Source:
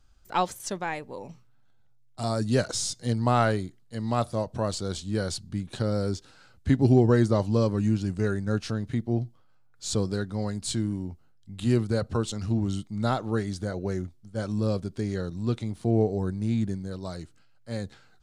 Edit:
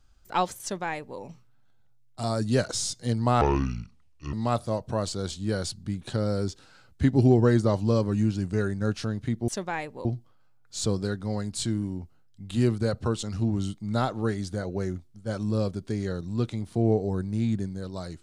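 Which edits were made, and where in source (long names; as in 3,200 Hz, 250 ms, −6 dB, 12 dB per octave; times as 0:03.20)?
0:00.62–0:01.19: duplicate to 0:09.14
0:03.41–0:03.99: play speed 63%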